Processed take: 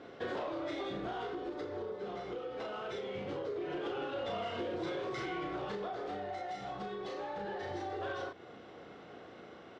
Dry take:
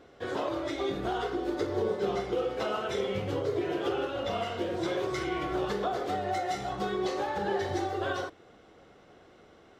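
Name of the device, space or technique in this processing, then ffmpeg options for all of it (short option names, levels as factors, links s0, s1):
AM radio: -filter_complex "[0:a]highpass=110,lowpass=4500,asplit=2[s0][s1];[s1]adelay=34,volume=0.668[s2];[s0][s2]amix=inputs=2:normalize=0,acompressor=threshold=0.0141:ratio=6,asoftclip=type=tanh:threshold=0.0224,tremolo=f=0.22:d=0.34,volume=1.5"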